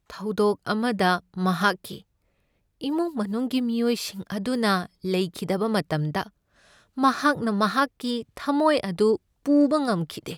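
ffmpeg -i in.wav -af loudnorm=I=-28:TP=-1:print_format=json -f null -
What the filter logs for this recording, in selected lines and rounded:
"input_i" : "-24.4",
"input_tp" : "-7.4",
"input_lra" : "4.4",
"input_thresh" : "-34.8",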